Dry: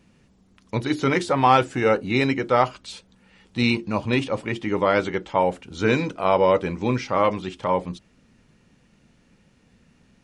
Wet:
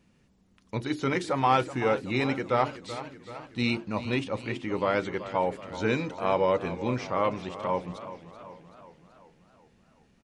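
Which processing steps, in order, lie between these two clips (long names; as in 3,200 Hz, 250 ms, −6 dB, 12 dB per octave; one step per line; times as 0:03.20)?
slap from a distant wall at 140 metres, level −24 dB
feedback echo with a swinging delay time 380 ms, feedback 56%, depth 82 cents, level −13.5 dB
level −6.5 dB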